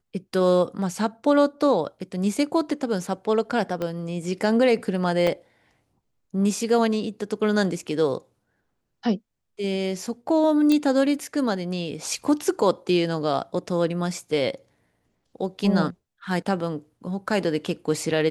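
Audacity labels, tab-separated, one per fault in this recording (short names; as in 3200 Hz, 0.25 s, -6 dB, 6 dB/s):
3.820000	3.820000	pop -16 dBFS
5.270000	5.270000	gap 4.6 ms
10.720000	10.720000	pop -10 dBFS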